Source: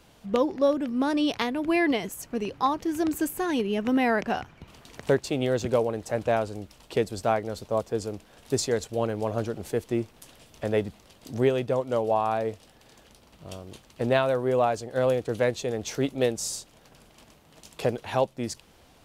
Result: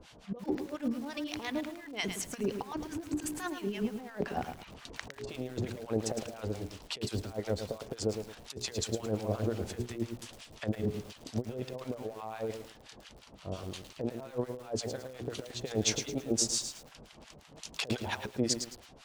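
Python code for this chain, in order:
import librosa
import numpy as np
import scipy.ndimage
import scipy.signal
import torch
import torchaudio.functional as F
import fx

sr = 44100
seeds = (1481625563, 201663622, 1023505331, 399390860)

y = scipy.signal.sosfilt(scipy.signal.butter(2, 5900.0, 'lowpass', fs=sr, output='sos'), x)
y = fx.high_shelf(y, sr, hz=4600.0, db=7.5)
y = fx.hum_notches(y, sr, base_hz=60, count=7)
y = fx.over_compress(y, sr, threshold_db=-31.0, ratio=-0.5)
y = fx.harmonic_tremolo(y, sr, hz=5.7, depth_pct=100, crossover_hz=900.0)
y = fx.echo_crushed(y, sr, ms=109, feedback_pct=35, bits=8, wet_db=-7)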